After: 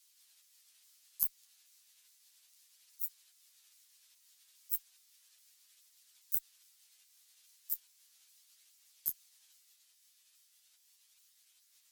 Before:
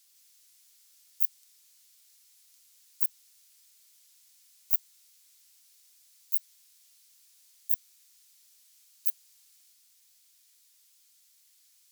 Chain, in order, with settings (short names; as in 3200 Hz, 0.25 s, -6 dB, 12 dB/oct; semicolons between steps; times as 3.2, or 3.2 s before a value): repeated pitch sweeps -6.5 st, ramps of 0.414 s; added harmonics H 2 -24 dB, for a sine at -5.5 dBFS; chorus voices 2, 0.17 Hz, delay 11 ms, depth 1.8 ms